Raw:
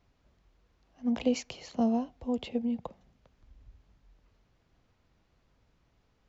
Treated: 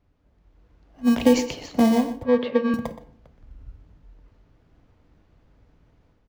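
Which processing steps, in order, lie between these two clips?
level rider gain up to 8 dB; in parallel at -7 dB: sample-and-hold 32×; 2.23–2.74 s: on the sum: cabinet simulation 220–3700 Hz, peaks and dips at 340 Hz -8 dB, 530 Hz +9 dB, 780 Hz -9 dB, 1.2 kHz +8 dB, 1.7 kHz +5 dB, 2.9 kHz -5 dB; on a send: delay 122 ms -13 dB; on the sum: FDN reverb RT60 0.58 s, low-frequency decay 1.05×, high-frequency decay 0.65×, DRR 10 dB; tape noise reduction on one side only decoder only

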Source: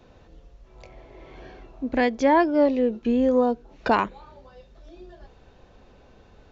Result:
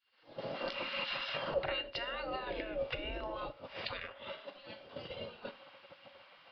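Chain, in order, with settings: Doppler pass-by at 1.62 s, 54 m/s, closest 3.7 m; recorder AGC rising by 69 dB/s; dynamic bell 280 Hz, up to +4 dB, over -45 dBFS, Q 2; spectral gate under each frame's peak -20 dB weak; compression 8:1, threshold -54 dBFS, peak gain reduction 19 dB; Schroeder reverb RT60 0.47 s, combs from 27 ms, DRR 12.5 dB; resampled via 11.025 kHz; small resonant body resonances 550/2800 Hz, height 16 dB, ringing for 70 ms; gate -59 dBFS, range -6 dB; trim +16 dB

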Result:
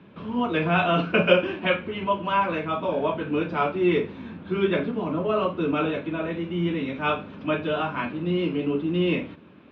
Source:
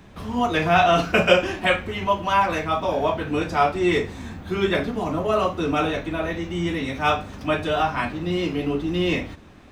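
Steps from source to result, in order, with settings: cabinet simulation 170–3000 Hz, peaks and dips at 170 Hz +4 dB, 750 Hz -10 dB, 1.2 kHz -3 dB, 1.9 kHz -9 dB

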